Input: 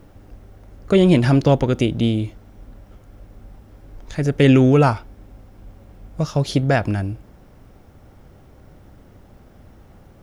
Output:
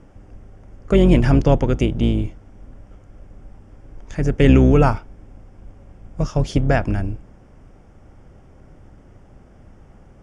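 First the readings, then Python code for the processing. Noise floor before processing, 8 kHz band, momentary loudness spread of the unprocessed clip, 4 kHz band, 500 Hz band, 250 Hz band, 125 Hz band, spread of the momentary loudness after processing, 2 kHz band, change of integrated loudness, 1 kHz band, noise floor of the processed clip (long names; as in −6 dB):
−48 dBFS, can't be measured, 16 LU, −4.5 dB, −1.0 dB, −0.5 dB, 0.0 dB, 16 LU, −1.5 dB, 0.0 dB, −1.0 dB, −48 dBFS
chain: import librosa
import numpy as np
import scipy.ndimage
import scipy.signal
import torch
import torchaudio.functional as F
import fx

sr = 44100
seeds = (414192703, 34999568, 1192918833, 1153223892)

y = fx.octave_divider(x, sr, octaves=2, level_db=-1.0)
y = scipy.signal.sosfilt(scipy.signal.butter(4, 8700.0, 'lowpass', fs=sr, output='sos'), y)
y = fx.peak_eq(y, sr, hz=4000.0, db=-15.0, octaves=0.27)
y = y * librosa.db_to_amplitude(-1.0)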